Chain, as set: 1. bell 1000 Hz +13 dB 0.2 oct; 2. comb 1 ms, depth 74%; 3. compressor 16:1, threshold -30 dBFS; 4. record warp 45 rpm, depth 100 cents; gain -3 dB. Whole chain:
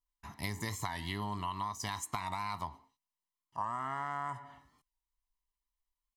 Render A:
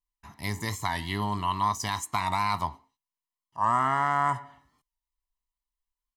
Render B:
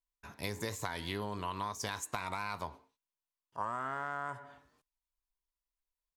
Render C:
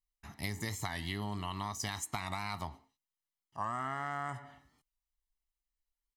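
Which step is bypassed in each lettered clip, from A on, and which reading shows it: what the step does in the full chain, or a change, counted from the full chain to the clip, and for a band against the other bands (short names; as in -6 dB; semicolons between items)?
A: 3, mean gain reduction 8.0 dB; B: 2, 500 Hz band +6.0 dB; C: 1, 1 kHz band -4.0 dB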